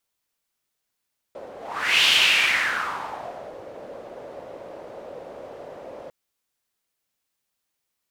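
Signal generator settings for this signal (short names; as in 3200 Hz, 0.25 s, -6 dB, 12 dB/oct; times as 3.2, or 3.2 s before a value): whoosh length 4.75 s, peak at 0.7, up 0.52 s, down 1.62 s, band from 550 Hz, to 3000 Hz, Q 3.9, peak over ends 22 dB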